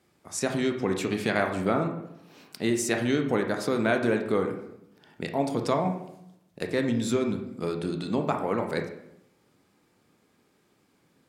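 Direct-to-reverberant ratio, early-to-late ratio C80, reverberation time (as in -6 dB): 4.0 dB, 10.5 dB, 0.80 s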